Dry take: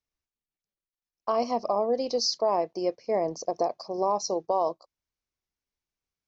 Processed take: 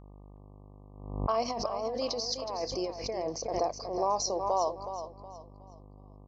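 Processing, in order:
low-pass that shuts in the quiet parts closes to 620 Hz, open at −24.5 dBFS
low-shelf EQ 470 Hz −10 dB
0:01.48–0:03.57: compressor whose output falls as the input rises −34 dBFS, ratio −1
hum with harmonics 50 Hz, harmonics 24, −52 dBFS −6 dB per octave
repeating echo 368 ms, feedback 34%, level −10 dB
background raised ahead of every attack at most 69 dB per second

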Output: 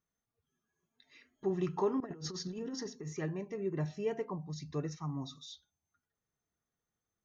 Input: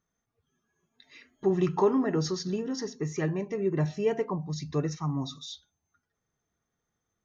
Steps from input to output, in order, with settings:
0:02.00–0:03.14: compressor whose output falls as the input rises −32 dBFS, ratio −0.5
level −8 dB

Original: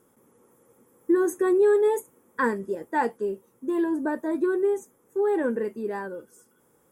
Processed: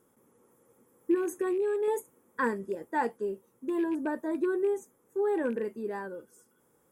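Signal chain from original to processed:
loose part that buzzes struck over −32 dBFS, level −36 dBFS
0:01.14–0:01.88: downward compressor, threshold −22 dBFS, peak gain reduction 6 dB
level −4.5 dB

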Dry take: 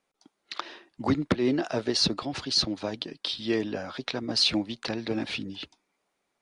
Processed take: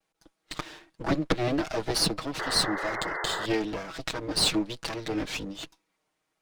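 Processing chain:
lower of the sound and its delayed copy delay 6.3 ms
sound drawn into the spectrogram noise, 0:02.39–0:03.46, 330–2,100 Hz −34 dBFS
pitch vibrato 1.1 Hz 54 cents
level +1 dB

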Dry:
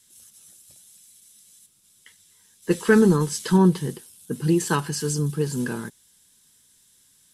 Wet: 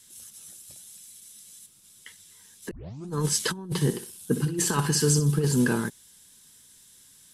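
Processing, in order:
compressor whose output falls as the input rises −24 dBFS, ratio −0.5
0:02.71: tape start 0.40 s
0:03.66–0:05.55: flutter between parallel walls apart 10.6 metres, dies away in 0.32 s

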